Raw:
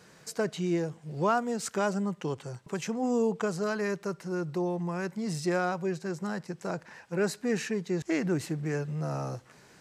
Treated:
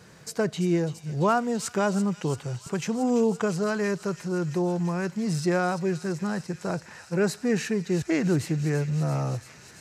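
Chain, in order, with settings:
parametric band 84 Hz +9.5 dB 1.6 octaves
delay with a high-pass on its return 338 ms, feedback 83%, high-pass 2,900 Hz, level −9.5 dB
level +3 dB

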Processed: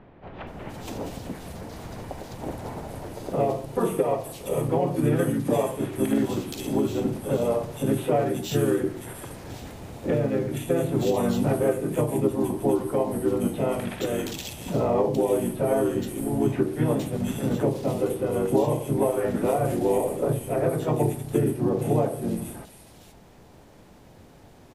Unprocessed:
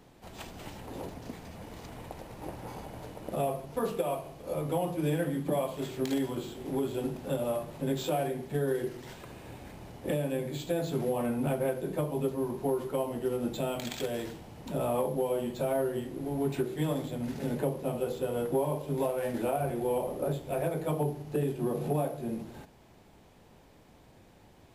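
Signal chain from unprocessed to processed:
multiband delay without the direct sound lows, highs 470 ms, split 2,800 Hz
pitch-shifted copies added −4 semitones −2 dB
level +5 dB

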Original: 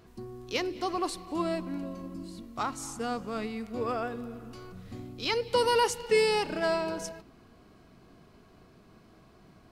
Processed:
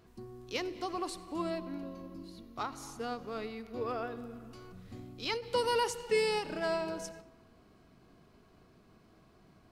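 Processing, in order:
0:01.50–0:04.17: thirty-one-band graphic EQ 200 Hz −6 dB, 400 Hz +4 dB, 4,000 Hz +3 dB, 8,000 Hz −11 dB
convolution reverb RT60 1.2 s, pre-delay 67 ms, DRR 17.5 dB
every ending faded ahead of time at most 170 dB per second
level −5 dB

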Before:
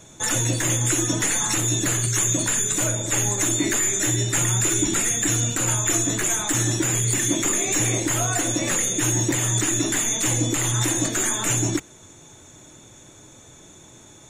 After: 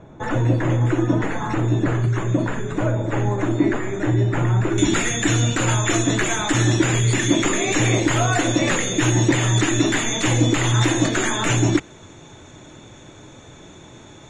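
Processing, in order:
low-pass filter 1,200 Hz 12 dB per octave, from 0:04.78 3,800 Hz
level +6.5 dB

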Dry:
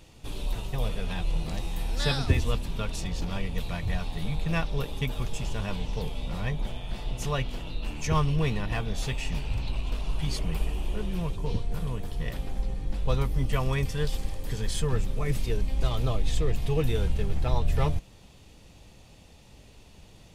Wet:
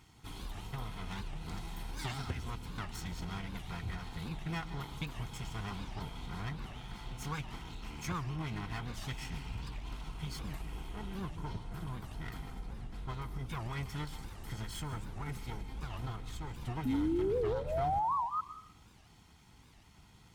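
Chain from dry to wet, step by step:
lower of the sound and its delayed copy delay 0.94 ms
parametric band 1,400 Hz +6.5 dB 0.87 octaves
downward compressor, threshold −27 dBFS, peak gain reduction 10.5 dB
sound drawn into the spectrogram rise, 0:16.85–0:18.41, 250–1,300 Hz −26 dBFS
notch comb filter 580 Hz
dense smooth reverb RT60 0.61 s, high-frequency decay 0.8×, pre-delay 120 ms, DRR 13.5 dB
wow of a warped record 78 rpm, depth 250 cents
level −5.5 dB

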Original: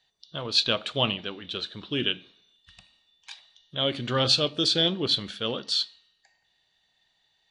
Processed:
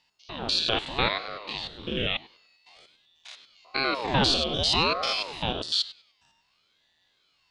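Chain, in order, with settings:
spectrum averaged block by block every 100 ms
ring modulator whose carrier an LFO sweeps 510 Hz, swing 85%, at 0.79 Hz
level +5.5 dB

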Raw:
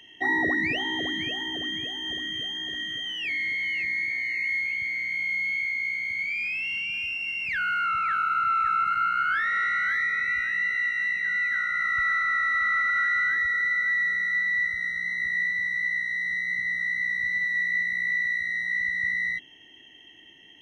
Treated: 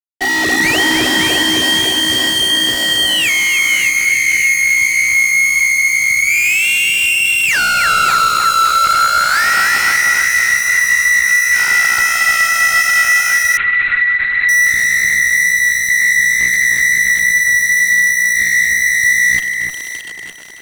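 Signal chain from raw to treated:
automatic gain control gain up to 10.5 dB
fuzz pedal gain 32 dB, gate −36 dBFS
delay that swaps between a low-pass and a high-pass 307 ms, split 2,200 Hz, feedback 52%, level −3 dB
0:13.57–0:14.49: linear-prediction vocoder at 8 kHz whisper

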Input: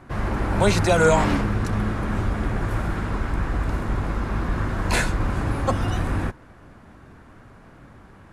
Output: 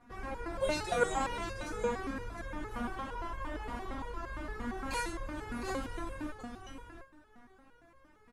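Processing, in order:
0:02.74–0:04.09: thirty-one-band graphic EQ 630 Hz +8 dB, 1,000 Hz +7 dB, 3,150 Hz +6 dB
on a send: single-tap delay 710 ms −8.5 dB
on the sum: step-sequenced resonator 8.7 Hz 240–540 Hz
level +2.5 dB

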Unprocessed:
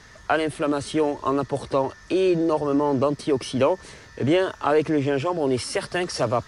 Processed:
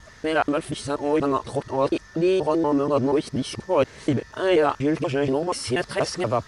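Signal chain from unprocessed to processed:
reversed piece by piece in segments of 240 ms

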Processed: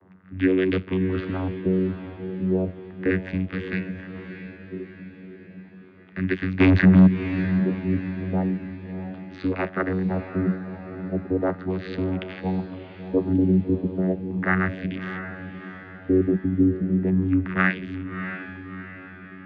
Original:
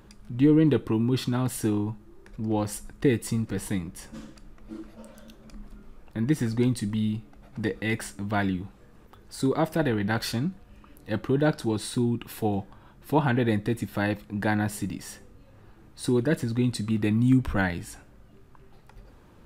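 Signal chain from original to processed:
flat-topped bell 2,500 Hz +13.5 dB
0:06.59–0:07.06: leveller curve on the samples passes 5
auto-filter low-pass sine 0.35 Hz 280–2,600 Hz
channel vocoder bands 16, saw 93.3 Hz
on a send: feedback delay with all-pass diffusion 653 ms, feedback 50%, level −9.5 dB

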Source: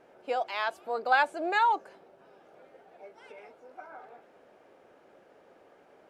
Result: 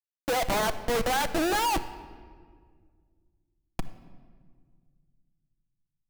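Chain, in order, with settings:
high-shelf EQ 4,300 Hz −8.5 dB
comparator with hysteresis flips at −36 dBFS
rectangular room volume 2,700 cubic metres, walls mixed, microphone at 0.64 metres
level +8.5 dB

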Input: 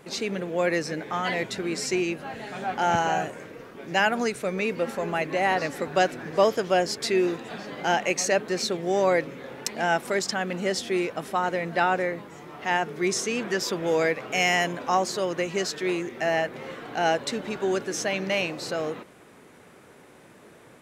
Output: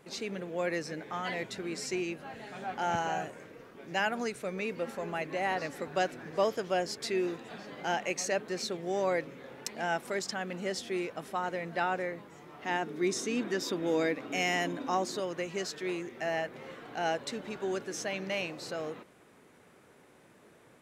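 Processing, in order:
0:12.65–0:15.20: hollow resonant body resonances 280/3,700 Hz, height 14 dB, ringing for 55 ms
level −8 dB

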